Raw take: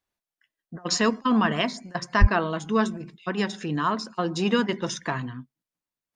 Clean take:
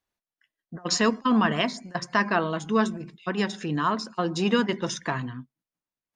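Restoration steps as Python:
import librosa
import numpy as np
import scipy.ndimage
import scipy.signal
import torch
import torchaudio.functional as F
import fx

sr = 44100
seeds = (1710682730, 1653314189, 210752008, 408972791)

y = fx.fix_deplosive(x, sr, at_s=(2.2,))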